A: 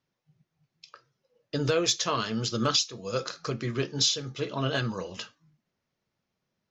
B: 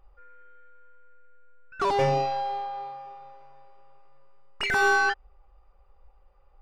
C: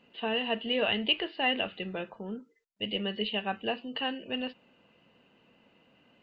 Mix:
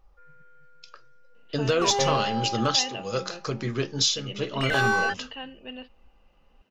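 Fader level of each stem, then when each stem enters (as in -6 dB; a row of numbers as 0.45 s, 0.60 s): +1.5 dB, -2.0 dB, -6.0 dB; 0.00 s, 0.00 s, 1.35 s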